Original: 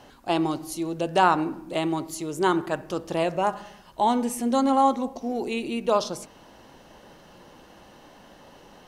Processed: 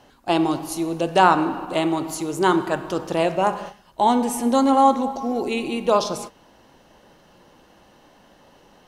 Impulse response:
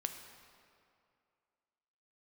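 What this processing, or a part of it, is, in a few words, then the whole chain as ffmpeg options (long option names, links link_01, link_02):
keyed gated reverb: -filter_complex "[0:a]asplit=3[link_01][link_02][link_03];[1:a]atrim=start_sample=2205[link_04];[link_02][link_04]afir=irnorm=-1:irlink=0[link_05];[link_03]apad=whole_len=391369[link_06];[link_05][link_06]sidechaingate=range=-33dB:threshold=-41dB:ratio=16:detection=peak,volume=3dB[link_07];[link_01][link_07]amix=inputs=2:normalize=0,volume=-3dB"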